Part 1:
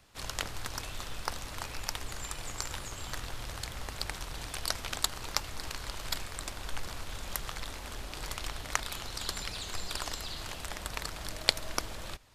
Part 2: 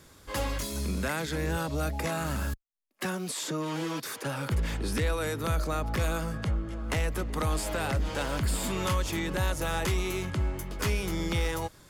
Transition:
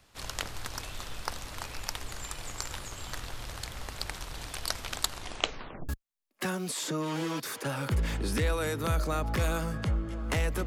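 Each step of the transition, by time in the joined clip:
part 1
5.1 tape stop 0.79 s
5.89 switch to part 2 from 2.49 s

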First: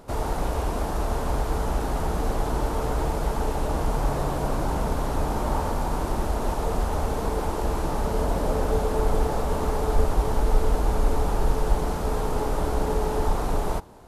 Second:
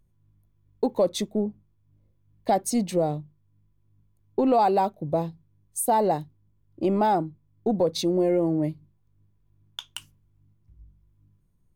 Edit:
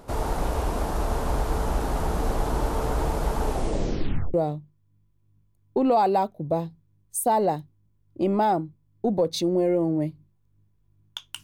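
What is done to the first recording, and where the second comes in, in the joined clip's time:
first
3.48 tape stop 0.86 s
4.34 switch to second from 2.96 s

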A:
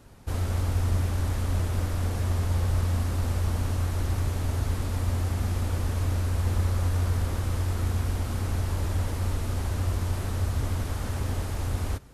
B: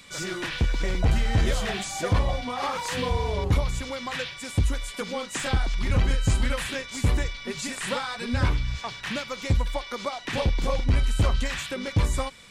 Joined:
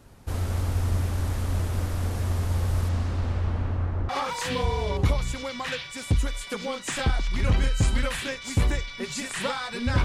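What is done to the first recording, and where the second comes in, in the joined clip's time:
A
2.88–4.09 LPF 7000 Hz -> 1300 Hz
4.09 switch to B from 2.56 s

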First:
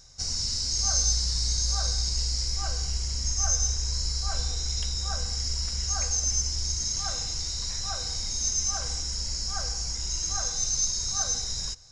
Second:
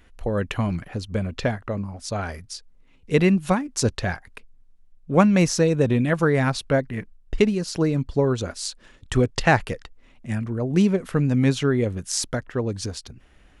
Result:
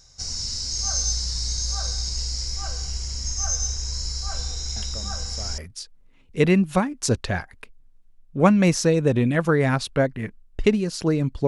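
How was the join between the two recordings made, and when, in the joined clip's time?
first
4.76 add second from 1.5 s 0.82 s -13 dB
5.58 switch to second from 2.32 s

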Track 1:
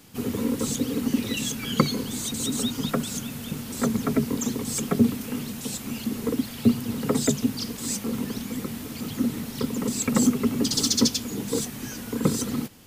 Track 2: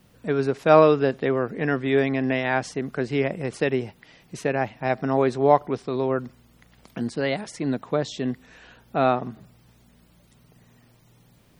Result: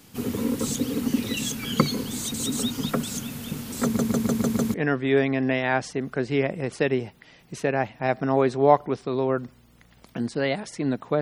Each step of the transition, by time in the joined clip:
track 1
3.84 stutter in place 0.15 s, 6 plays
4.74 switch to track 2 from 1.55 s

